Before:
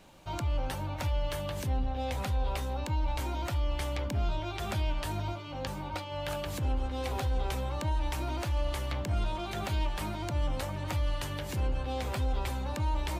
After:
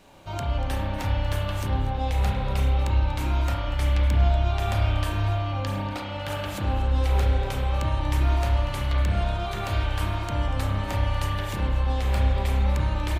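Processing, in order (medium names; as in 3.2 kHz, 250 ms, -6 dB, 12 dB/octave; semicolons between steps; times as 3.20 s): echo from a far wall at 41 m, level -13 dB; spring tank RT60 1.9 s, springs 30 ms, chirp 25 ms, DRR -2.5 dB; trim +2 dB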